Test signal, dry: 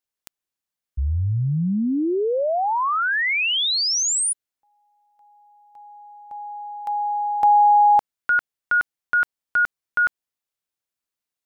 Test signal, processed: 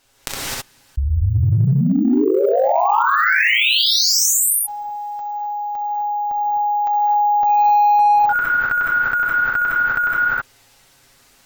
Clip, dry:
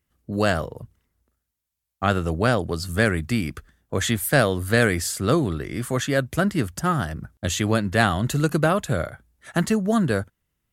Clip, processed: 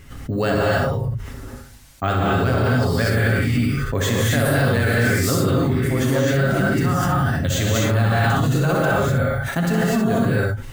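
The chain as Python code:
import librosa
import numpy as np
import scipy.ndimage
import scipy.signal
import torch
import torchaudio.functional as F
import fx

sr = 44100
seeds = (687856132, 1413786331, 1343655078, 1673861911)

p1 = fx.low_shelf(x, sr, hz=89.0, db=9.5)
p2 = p1 + 0.45 * np.pad(p1, (int(7.3 * sr / 1000.0), 0))[:len(p1)]
p3 = p2 + fx.room_early_taps(p2, sr, ms=(36, 64), db=(-16.0, -6.5), dry=0)
p4 = np.repeat(scipy.signal.resample_poly(p3, 1, 2), 2)[:len(p3)]
p5 = fx.high_shelf(p4, sr, hz=7500.0, db=-3.0)
p6 = fx.rev_gated(p5, sr, seeds[0], gate_ms=280, shape='rising', drr_db=-7.0)
p7 = np.clip(10.0 ** (8.5 / 20.0) * p6, -1.0, 1.0) / 10.0 ** (8.5 / 20.0)
p8 = p6 + (p7 * librosa.db_to_amplitude(-10.0))
p9 = fx.env_flatten(p8, sr, amount_pct=70)
y = p9 * librosa.db_to_amplitude(-13.0)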